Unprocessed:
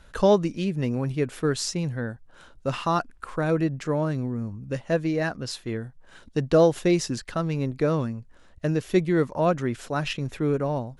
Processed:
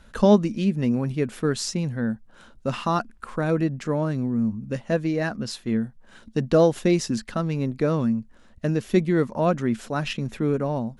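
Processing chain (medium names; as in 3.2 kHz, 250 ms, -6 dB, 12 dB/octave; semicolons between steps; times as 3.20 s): peaking EQ 220 Hz +13 dB 0.26 oct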